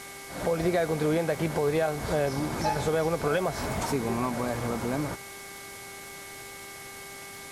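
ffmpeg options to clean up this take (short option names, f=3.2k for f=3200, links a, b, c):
-af "adeclick=t=4,bandreject=f=396.8:t=h:w=4,bandreject=f=793.6:t=h:w=4,bandreject=f=1.1904k:t=h:w=4,bandreject=f=1.5872k:t=h:w=4,bandreject=f=1.984k:t=h:w=4,bandreject=f=2.2k:w=30,afwtdn=0.0063"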